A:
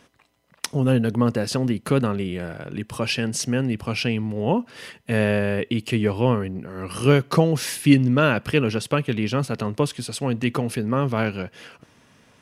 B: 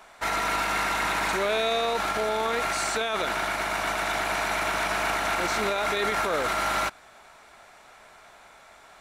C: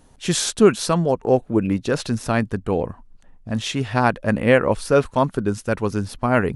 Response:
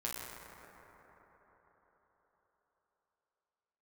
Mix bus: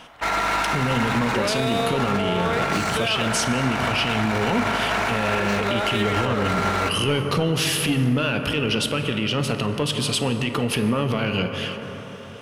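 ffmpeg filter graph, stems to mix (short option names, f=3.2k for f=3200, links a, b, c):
-filter_complex "[0:a]acontrast=89,equalizer=f=3k:t=o:w=0.53:g=12,alimiter=limit=-10dB:level=0:latency=1:release=76,volume=-4dB,asplit=2[a][b];[b]volume=-4dB[c];[1:a]adynamicsmooth=sensitivity=6.5:basefreq=2.2k,volume=2.5dB,asplit=2[d][e];[e]volume=-10dB[f];[3:a]atrim=start_sample=2205[g];[c][f]amix=inputs=2:normalize=0[h];[h][g]afir=irnorm=-1:irlink=0[i];[a][d][i]amix=inputs=3:normalize=0,alimiter=limit=-12.5dB:level=0:latency=1:release=105"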